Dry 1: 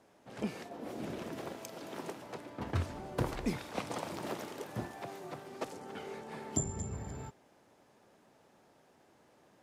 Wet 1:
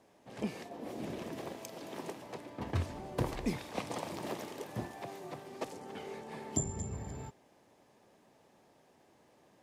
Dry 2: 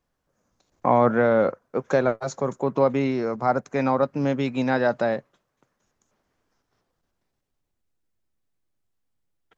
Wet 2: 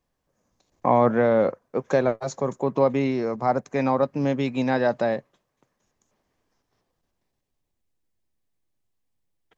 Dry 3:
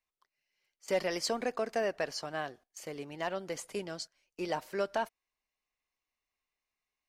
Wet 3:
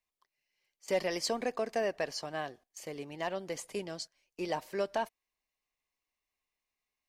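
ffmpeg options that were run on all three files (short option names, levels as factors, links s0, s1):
-af "equalizer=f=1400:w=6.3:g=-7.5"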